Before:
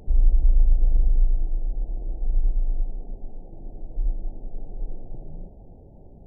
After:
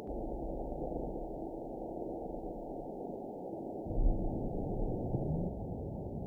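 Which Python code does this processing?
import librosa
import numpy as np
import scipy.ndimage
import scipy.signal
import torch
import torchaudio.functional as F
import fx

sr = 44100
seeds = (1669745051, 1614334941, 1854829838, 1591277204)

y = fx.highpass(x, sr, hz=fx.steps((0.0, 300.0), (3.86, 83.0)), slope=12)
y = y * librosa.db_to_amplitude(10.0)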